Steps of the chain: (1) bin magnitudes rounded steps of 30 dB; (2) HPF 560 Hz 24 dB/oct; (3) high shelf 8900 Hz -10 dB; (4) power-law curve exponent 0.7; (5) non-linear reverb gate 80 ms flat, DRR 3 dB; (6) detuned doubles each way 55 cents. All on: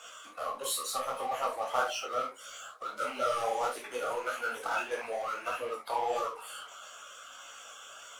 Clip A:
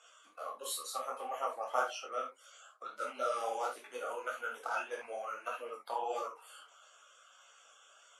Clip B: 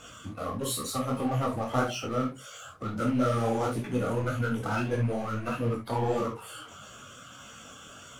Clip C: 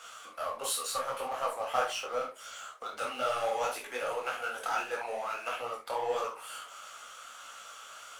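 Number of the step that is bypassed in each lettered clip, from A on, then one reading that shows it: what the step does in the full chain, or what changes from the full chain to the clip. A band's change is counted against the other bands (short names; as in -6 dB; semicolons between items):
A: 4, crest factor change +3.5 dB; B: 2, 125 Hz band +32.0 dB; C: 1, 250 Hz band -2.0 dB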